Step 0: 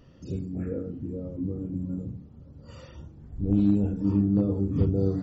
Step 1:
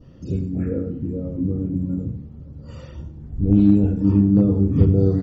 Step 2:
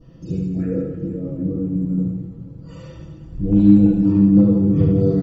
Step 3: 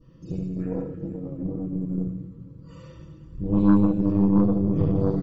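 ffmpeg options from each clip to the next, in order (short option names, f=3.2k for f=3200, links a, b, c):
-af "lowshelf=f=500:g=7.5,aecho=1:1:95|190|285:0.2|0.0638|0.0204,adynamicequalizer=threshold=0.00251:dfrequency=2100:dqfactor=0.99:tfrequency=2100:tqfactor=0.99:attack=5:release=100:ratio=0.375:range=2.5:mode=boostabove:tftype=bell,volume=1.5dB"
-filter_complex "[0:a]aecho=1:1:6.1:0.64,asplit=2[a][b];[b]aecho=0:1:70|168|305.2|497.3|766.2:0.631|0.398|0.251|0.158|0.1[c];[a][c]amix=inputs=2:normalize=0,volume=-2dB"
-af "asuperstop=centerf=730:order=4:qfactor=3.1,aeval=exprs='0.891*(cos(1*acos(clip(val(0)/0.891,-1,1)))-cos(1*PI/2))+0.0891*(cos(6*acos(clip(val(0)/0.891,-1,1)))-cos(6*PI/2))':c=same,equalizer=f=1.1k:w=6.1:g=6.5,volume=-7dB"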